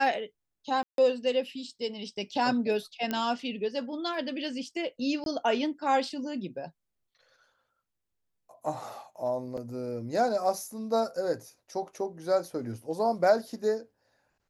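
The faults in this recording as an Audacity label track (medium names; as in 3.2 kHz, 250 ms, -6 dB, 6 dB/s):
0.830000	0.980000	dropout 152 ms
3.110000	3.110000	pop -16 dBFS
5.240000	5.260000	dropout 22 ms
9.570000	9.580000	dropout 5.9 ms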